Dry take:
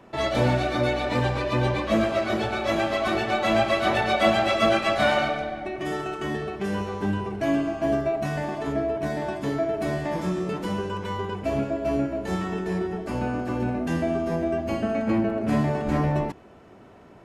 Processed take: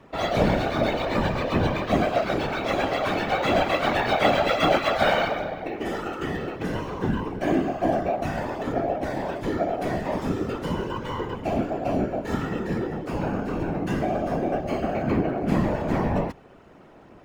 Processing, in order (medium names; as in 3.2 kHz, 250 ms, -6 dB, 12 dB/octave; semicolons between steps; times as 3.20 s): whisper effect; decimation joined by straight lines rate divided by 2×